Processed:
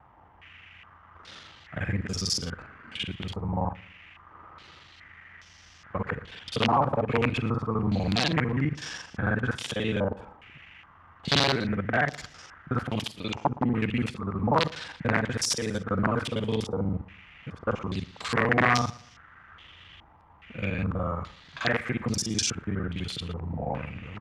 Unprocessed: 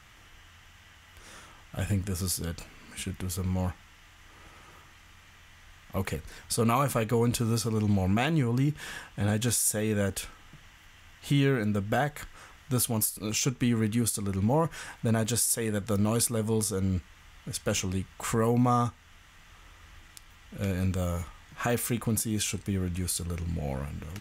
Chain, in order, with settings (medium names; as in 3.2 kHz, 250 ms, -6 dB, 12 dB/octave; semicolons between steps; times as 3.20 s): time reversed locally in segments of 41 ms; integer overflow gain 17.5 dB; high-pass 68 Hz; on a send: feedback delay 116 ms, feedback 33%, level -20 dB; on the sum: step-sequenced low-pass 2.4 Hz 890–5400 Hz